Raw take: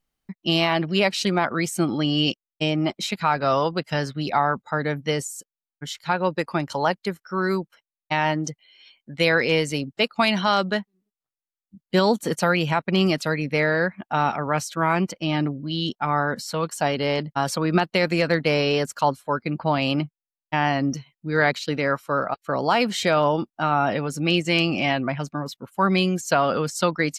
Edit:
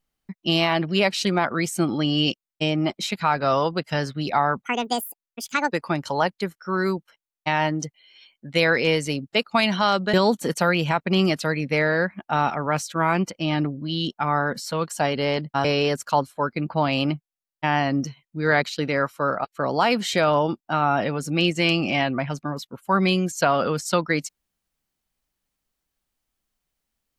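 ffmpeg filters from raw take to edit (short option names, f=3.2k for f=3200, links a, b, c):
-filter_complex "[0:a]asplit=5[a][b][c][d][e];[a]atrim=end=4.644[f];[b]atrim=start=4.64:end=6.36,asetpts=PTS-STARTPTS,asetrate=70560,aresample=44100[g];[c]atrim=start=6.356:end=10.782[h];[d]atrim=start=11.948:end=17.462[i];[e]atrim=start=18.538[j];[f][g]acrossfade=d=0.004:c1=hsin:c2=hsin[k];[k][h]acrossfade=d=0.004:c1=hsin:c2=hsin[l];[l][i]acrossfade=d=0.004:c1=hsin:c2=hsin[m];[m][j]acrossfade=d=0.004:c1=hsin:c2=hsin"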